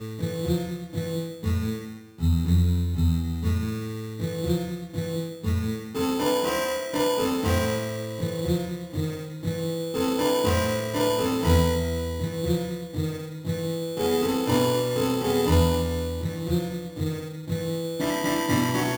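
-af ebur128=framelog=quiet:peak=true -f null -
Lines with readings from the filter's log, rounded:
Integrated loudness:
  I:         -26.2 LUFS
  Threshold: -36.3 LUFS
Loudness range:
  LRA:         2.9 LU
  Threshold: -46.1 LUFS
  LRA low:   -27.5 LUFS
  LRA high:  -24.6 LUFS
True peak:
  Peak:       -8.3 dBFS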